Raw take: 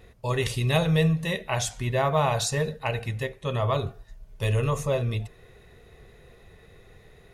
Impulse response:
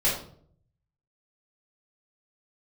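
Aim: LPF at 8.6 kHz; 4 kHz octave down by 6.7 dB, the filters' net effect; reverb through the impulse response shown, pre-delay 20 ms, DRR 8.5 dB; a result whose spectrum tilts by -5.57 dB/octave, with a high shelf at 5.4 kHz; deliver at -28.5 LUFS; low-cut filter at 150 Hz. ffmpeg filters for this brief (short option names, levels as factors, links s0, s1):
-filter_complex "[0:a]highpass=150,lowpass=8600,equalizer=f=4000:t=o:g=-6,highshelf=f=5400:g=-5.5,asplit=2[s0][s1];[1:a]atrim=start_sample=2205,adelay=20[s2];[s1][s2]afir=irnorm=-1:irlink=0,volume=0.0944[s3];[s0][s3]amix=inputs=2:normalize=0,volume=0.944"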